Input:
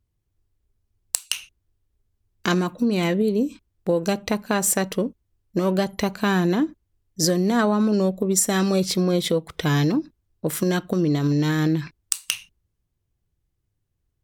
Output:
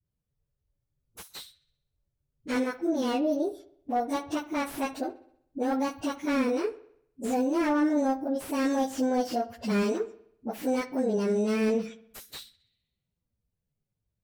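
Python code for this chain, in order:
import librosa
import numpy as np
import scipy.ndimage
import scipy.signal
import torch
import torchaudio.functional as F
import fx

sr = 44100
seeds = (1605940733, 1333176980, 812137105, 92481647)

p1 = fx.pitch_bins(x, sr, semitones=6.0)
p2 = p1 + fx.echo_wet_lowpass(p1, sr, ms=64, feedback_pct=53, hz=3300.0, wet_db=-17.0, dry=0)
p3 = fx.spec_repair(p2, sr, seeds[0], start_s=12.57, length_s=0.63, low_hz=1800.0, high_hz=4500.0, source='both')
p4 = fx.dispersion(p3, sr, late='highs', ms=52.0, hz=380.0)
p5 = fx.slew_limit(p4, sr, full_power_hz=96.0)
y = F.gain(torch.from_numpy(p5), -4.5).numpy()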